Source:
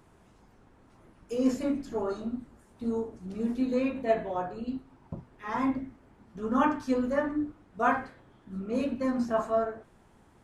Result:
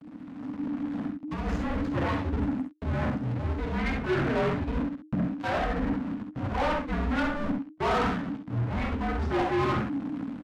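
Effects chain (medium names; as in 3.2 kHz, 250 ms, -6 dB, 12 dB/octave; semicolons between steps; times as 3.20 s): tone controls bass +11 dB, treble -14 dB; vibrato 5.4 Hz 23 cents; reverse; compression 20:1, threshold -39 dBFS, peak gain reduction 24.5 dB; reverse; hysteresis with a dead band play -44.5 dBFS; gate with hold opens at -52 dBFS; frequency shift -310 Hz; early reflections 51 ms -10 dB, 66 ms -9 dB; level rider gain up to 11.5 dB; dynamic bell 1.8 kHz, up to +4 dB, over -56 dBFS, Q 1.8; overdrive pedal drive 24 dB, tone 2.9 kHz, clips at -19.5 dBFS; trim +1.5 dB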